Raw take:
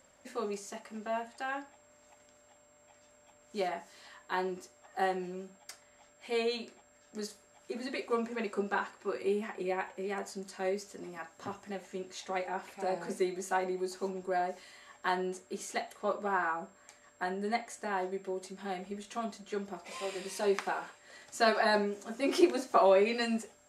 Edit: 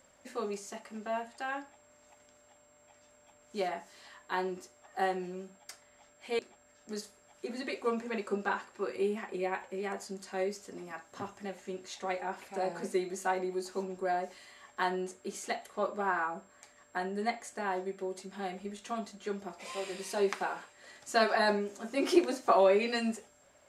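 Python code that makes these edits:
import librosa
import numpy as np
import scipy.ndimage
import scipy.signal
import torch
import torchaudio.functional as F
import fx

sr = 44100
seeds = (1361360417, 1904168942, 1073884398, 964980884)

y = fx.edit(x, sr, fx.cut(start_s=6.39, length_s=0.26), tone=tone)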